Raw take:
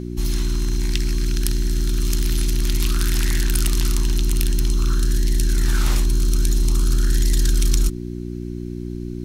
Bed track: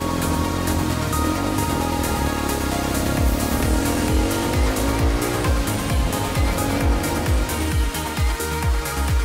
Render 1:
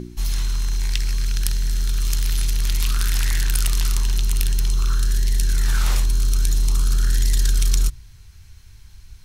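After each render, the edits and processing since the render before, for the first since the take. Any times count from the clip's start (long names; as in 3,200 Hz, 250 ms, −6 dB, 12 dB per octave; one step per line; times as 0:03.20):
hum removal 60 Hz, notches 6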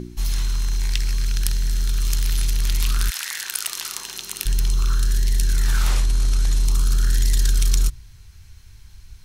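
0:03.09–0:04.45: high-pass filter 1,000 Hz → 330 Hz
0:05.90–0:06.65: variable-slope delta modulation 64 kbit/s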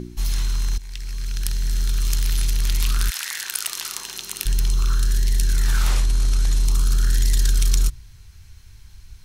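0:00.78–0:01.78: fade in, from −17.5 dB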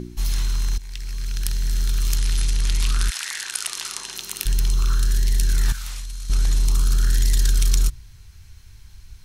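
0:02.18–0:04.15: Butterworth low-pass 11,000 Hz
0:05.72–0:06.30: guitar amp tone stack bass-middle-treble 5-5-5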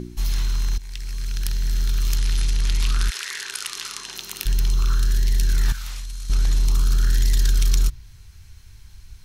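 0:03.14–0:04.03: healed spectral selection 350–1,000 Hz before
dynamic equaliser 9,100 Hz, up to −6 dB, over −45 dBFS, Q 1.3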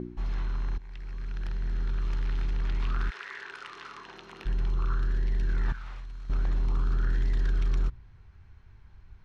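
low-pass filter 1,300 Hz 12 dB per octave
low-shelf EQ 150 Hz −9 dB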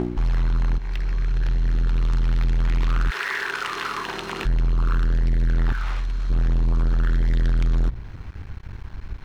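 leveller curve on the samples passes 3
in parallel at +2 dB: downward compressor, threshold −33 dBFS, peak gain reduction 12 dB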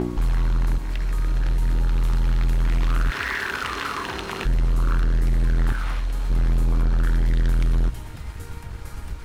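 mix in bed track −19.5 dB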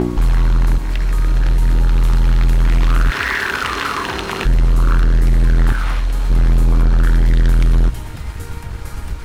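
level +7.5 dB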